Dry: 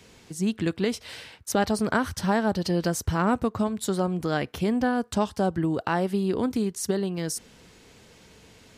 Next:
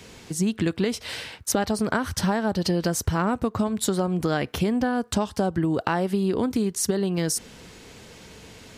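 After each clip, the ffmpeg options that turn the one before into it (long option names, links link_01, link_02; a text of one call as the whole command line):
ffmpeg -i in.wav -af "acompressor=threshold=-27dB:ratio=6,volume=7dB" out.wav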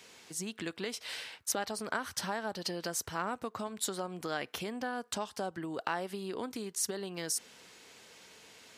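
ffmpeg -i in.wav -af "highpass=frequency=790:poles=1,volume=-6.5dB" out.wav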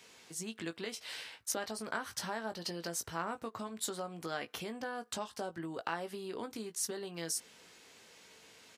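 ffmpeg -i in.wav -filter_complex "[0:a]asplit=2[link_01][link_02];[link_02]adelay=18,volume=-8dB[link_03];[link_01][link_03]amix=inputs=2:normalize=0,volume=-3.5dB" out.wav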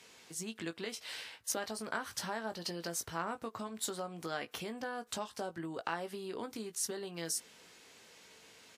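ffmpeg -i in.wav -ar 48000 -c:a wmav2 -b:a 128k out.wma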